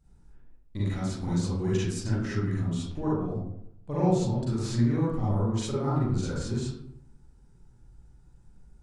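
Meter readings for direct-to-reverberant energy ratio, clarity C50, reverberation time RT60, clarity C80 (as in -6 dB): -9.0 dB, -2.0 dB, 0.75 s, 3.5 dB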